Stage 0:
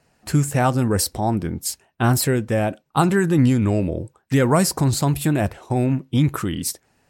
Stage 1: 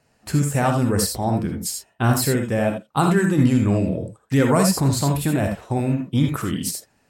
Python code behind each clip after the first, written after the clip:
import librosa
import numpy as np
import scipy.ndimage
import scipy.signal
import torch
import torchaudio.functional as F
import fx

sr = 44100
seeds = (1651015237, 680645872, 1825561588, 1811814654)

y = fx.rev_gated(x, sr, seeds[0], gate_ms=100, shape='rising', drr_db=3.0)
y = y * 10.0 ** (-2.0 / 20.0)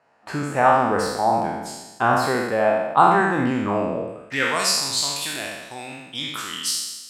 y = fx.spec_trails(x, sr, decay_s=1.12)
y = fx.filter_sweep_bandpass(y, sr, from_hz=990.0, to_hz=4000.0, start_s=4.03, end_s=4.68, q=1.2)
y = y * 10.0 ** (6.0 / 20.0)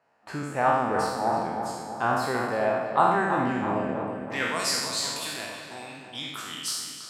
y = fx.echo_filtered(x, sr, ms=325, feedback_pct=56, hz=3000.0, wet_db=-7.0)
y = y * 10.0 ** (-6.5 / 20.0)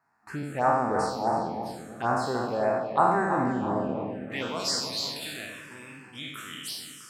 y = fx.env_phaser(x, sr, low_hz=530.0, high_hz=3200.0, full_db=-21.0)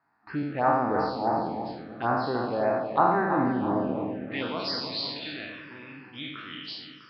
y = scipy.signal.sosfilt(scipy.signal.butter(16, 5000.0, 'lowpass', fs=sr, output='sos'), x)
y = fx.peak_eq(y, sr, hz=300.0, db=7.0, octaves=0.24)